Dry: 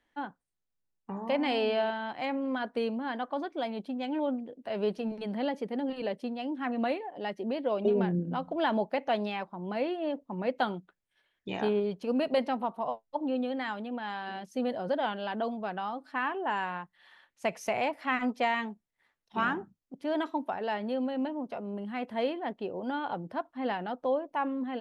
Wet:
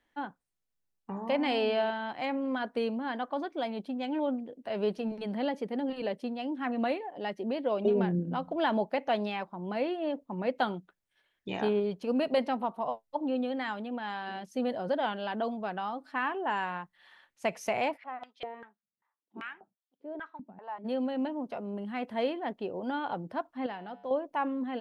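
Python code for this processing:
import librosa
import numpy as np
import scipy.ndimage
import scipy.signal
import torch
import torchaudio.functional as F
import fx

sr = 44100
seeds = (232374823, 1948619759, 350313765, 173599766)

y = fx.filter_held_bandpass(x, sr, hz=5.1, low_hz=200.0, high_hz=3400.0, at=(17.96, 20.84), fade=0.02)
y = fx.comb_fb(y, sr, f0_hz=65.0, decay_s=1.2, harmonics='odd', damping=0.0, mix_pct=60, at=(23.66, 24.11))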